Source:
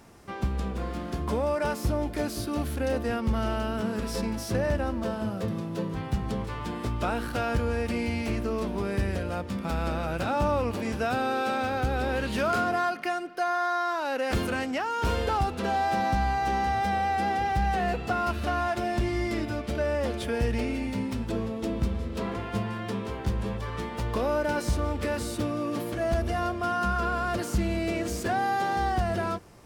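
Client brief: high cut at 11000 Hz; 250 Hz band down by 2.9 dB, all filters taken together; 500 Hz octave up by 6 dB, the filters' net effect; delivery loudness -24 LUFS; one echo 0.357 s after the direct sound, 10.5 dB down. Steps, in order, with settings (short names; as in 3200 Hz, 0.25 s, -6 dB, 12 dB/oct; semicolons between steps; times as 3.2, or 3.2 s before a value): LPF 11000 Hz; bell 250 Hz -7 dB; bell 500 Hz +9 dB; echo 0.357 s -10.5 dB; gain +2 dB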